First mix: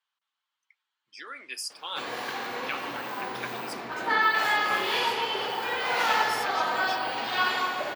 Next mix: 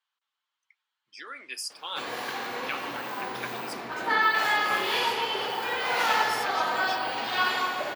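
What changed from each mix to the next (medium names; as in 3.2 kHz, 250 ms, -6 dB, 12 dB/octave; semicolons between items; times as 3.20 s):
background: add peaking EQ 13 kHz +3.5 dB 1.1 oct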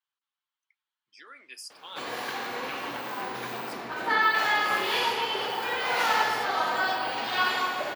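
speech -7.5 dB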